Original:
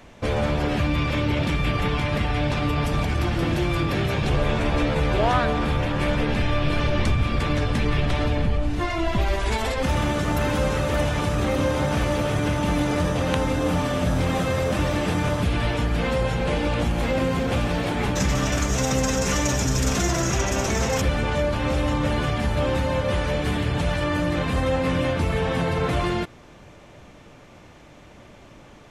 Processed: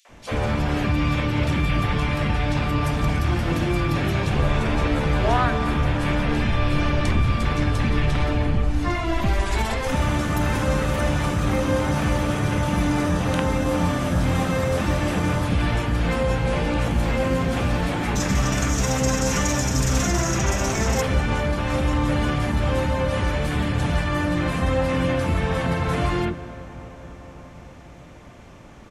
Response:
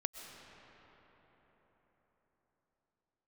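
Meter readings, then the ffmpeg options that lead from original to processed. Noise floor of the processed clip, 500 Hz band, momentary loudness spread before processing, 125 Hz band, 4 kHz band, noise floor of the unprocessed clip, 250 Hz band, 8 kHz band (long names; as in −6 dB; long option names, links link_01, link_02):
−42 dBFS, −1.0 dB, 2 LU, +1.5 dB, −1.0 dB, −47 dBFS, +1.0 dB, +1.0 dB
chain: -filter_complex "[0:a]acrossover=split=480|3500[link_01][link_02][link_03];[link_02]adelay=50[link_04];[link_01]adelay=90[link_05];[link_05][link_04][link_03]amix=inputs=3:normalize=0,asplit=2[link_06][link_07];[1:a]atrim=start_sample=2205,asetrate=26901,aresample=44100[link_08];[link_07][link_08]afir=irnorm=-1:irlink=0,volume=-9dB[link_09];[link_06][link_09]amix=inputs=2:normalize=0,volume=-1.5dB"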